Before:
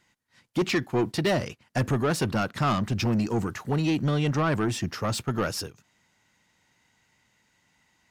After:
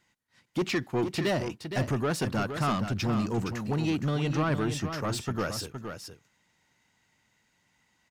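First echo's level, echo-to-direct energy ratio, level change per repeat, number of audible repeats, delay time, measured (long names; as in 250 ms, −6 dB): −8.0 dB, −8.0 dB, repeats not evenly spaced, 1, 466 ms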